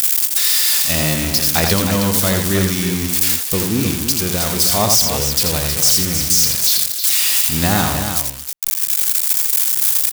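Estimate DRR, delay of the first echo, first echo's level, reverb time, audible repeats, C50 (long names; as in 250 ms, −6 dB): no reverb audible, 84 ms, −5.0 dB, no reverb audible, 3, no reverb audible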